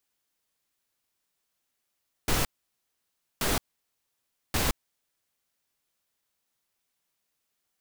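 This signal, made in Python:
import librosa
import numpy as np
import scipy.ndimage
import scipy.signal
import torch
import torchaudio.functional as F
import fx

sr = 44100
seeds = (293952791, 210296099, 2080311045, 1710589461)

y = fx.noise_burst(sr, seeds[0], colour='pink', on_s=0.17, off_s=0.96, bursts=3, level_db=-25.5)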